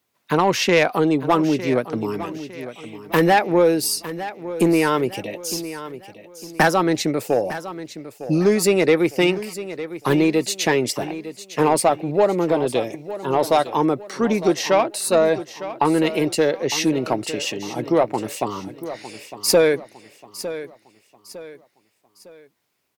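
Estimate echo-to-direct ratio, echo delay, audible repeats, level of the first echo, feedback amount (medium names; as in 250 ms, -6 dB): -13.0 dB, 906 ms, 3, -13.5 dB, 38%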